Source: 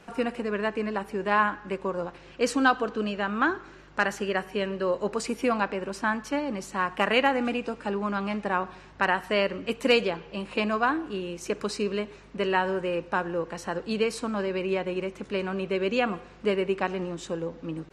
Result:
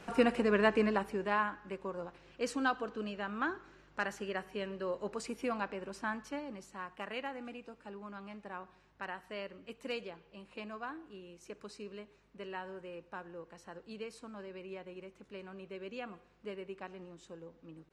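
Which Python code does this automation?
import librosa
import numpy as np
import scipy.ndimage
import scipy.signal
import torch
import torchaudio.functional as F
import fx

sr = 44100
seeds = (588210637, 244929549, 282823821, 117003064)

y = fx.gain(x, sr, db=fx.line((0.82, 0.5), (1.46, -10.5), (6.17, -10.5), (6.98, -18.0)))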